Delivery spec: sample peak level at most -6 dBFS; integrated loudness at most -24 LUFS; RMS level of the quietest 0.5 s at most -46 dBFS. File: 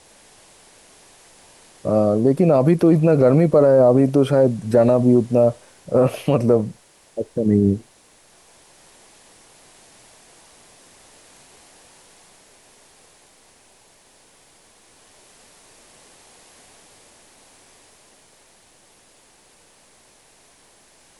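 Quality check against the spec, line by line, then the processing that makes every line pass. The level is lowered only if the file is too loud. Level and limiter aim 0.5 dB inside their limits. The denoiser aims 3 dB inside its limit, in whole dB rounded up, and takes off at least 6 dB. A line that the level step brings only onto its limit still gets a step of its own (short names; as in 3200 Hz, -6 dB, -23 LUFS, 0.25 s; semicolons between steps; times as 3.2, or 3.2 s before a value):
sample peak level -5.5 dBFS: fail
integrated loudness -17.0 LUFS: fail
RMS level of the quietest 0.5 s -54 dBFS: OK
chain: gain -7.5 dB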